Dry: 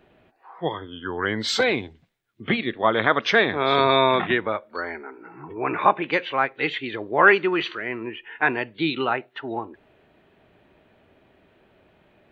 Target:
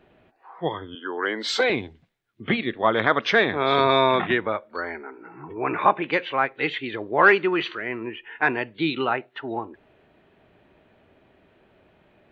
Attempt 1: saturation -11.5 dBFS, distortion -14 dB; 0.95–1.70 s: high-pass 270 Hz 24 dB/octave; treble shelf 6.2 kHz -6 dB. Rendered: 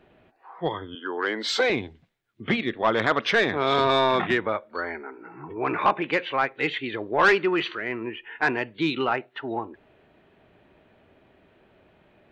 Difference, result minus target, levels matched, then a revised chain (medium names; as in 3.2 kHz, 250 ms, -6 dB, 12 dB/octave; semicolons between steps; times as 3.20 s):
saturation: distortion +17 dB
saturation -0.5 dBFS, distortion -30 dB; 0.95–1.70 s: high-pass 270 Hz 24 dB/octave; treble shelf 6.2 kHz -6 dB